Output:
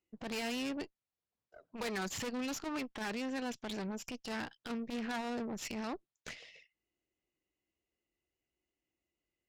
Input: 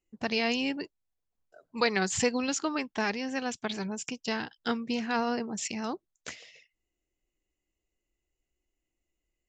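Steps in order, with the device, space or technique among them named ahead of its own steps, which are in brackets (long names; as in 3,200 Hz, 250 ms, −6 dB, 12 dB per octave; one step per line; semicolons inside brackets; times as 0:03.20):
valve radio (band-pass filter 86–4,800 Hz; tube saturation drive 36 dB, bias 0.7; saturating transformer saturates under 200 Hz)
level +2 dB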